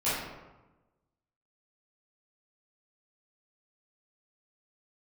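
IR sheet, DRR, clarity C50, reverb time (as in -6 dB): -13.5 dB, -1.0 dB, 1.1 s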